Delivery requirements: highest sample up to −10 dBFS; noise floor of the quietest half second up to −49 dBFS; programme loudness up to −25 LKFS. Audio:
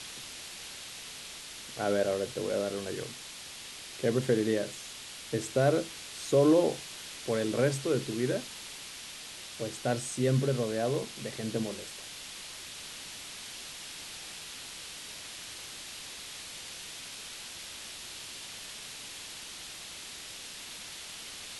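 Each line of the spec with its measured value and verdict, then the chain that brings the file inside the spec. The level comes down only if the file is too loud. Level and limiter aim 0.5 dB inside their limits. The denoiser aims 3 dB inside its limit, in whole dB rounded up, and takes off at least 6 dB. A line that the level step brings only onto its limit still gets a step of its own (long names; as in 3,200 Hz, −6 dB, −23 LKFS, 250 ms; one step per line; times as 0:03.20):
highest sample −13.0 dBFS: in spec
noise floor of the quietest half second −45 dBFS: out of spec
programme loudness −34.0 LKFS: in spec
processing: broadband denoise 7 dB, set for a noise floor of −45 dBFS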